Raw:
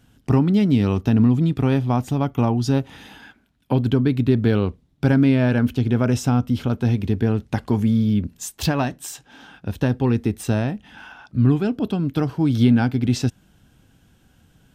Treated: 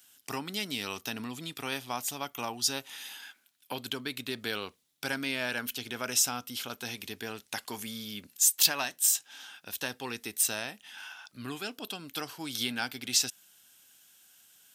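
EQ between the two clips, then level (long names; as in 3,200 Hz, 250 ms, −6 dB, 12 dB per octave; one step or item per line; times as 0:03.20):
first difference
low-shelf EQ 260 Hz −5 dB
+9.0 dB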